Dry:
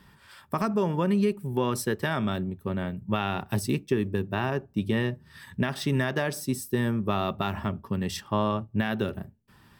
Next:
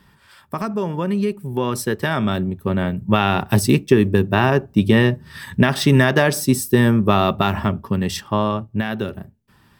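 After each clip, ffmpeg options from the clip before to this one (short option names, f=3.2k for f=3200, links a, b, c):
-af "dynaudnorm=f=370:g=13:m=11.5dB,volume=2dB"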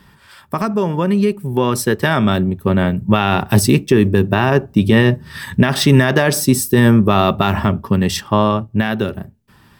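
-af "alimiter=level_in=6.5dB:limit=-1dB:release=50:level=0:latency=1,volume=-1dB"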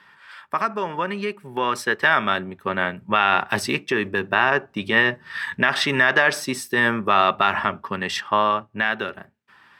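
-af "bandpass=f=1.7k:t=q:w=1.1:csg=0,volume=3dB"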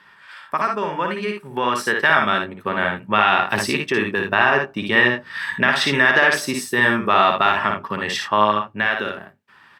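-af "aecho=1:1:57|77:0.596|0.282,volume=1dB"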